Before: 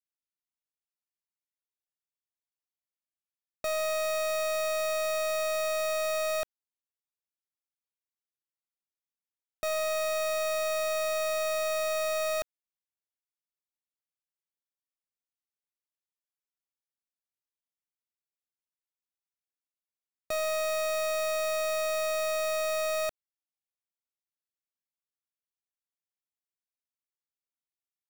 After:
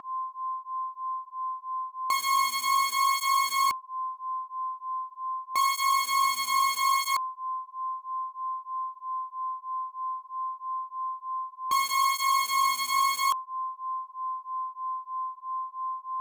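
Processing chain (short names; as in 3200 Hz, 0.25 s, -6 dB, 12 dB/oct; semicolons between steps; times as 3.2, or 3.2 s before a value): whine 600 Hz -35 dBFS; speed mistake 45 rpm record played at 78 rpm; tape flanging out of phase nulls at 0.78 Hz, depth 2 ms; gain +7 dB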